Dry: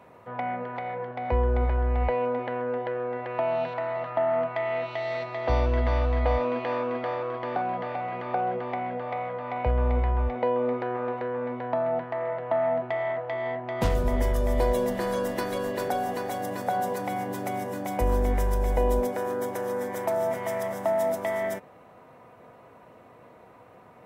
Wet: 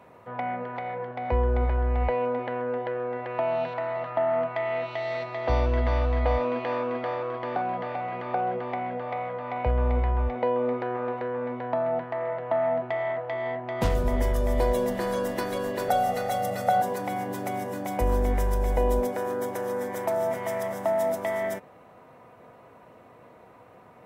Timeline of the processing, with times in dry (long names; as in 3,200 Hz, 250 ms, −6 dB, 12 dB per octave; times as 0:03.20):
0:15.88–0:16.82: comb filter 1.5 ms, depth 98%